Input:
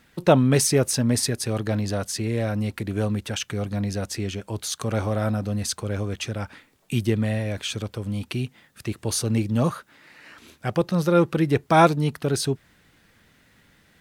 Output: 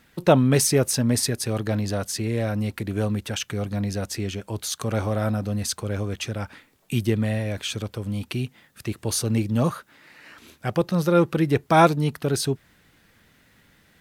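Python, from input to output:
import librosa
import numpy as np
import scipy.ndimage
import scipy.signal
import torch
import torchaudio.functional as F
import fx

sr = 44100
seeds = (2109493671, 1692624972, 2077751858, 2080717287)

y = fx.peak_eq(x, sr, hz=13000.0, db=4.5, octaves=0.3)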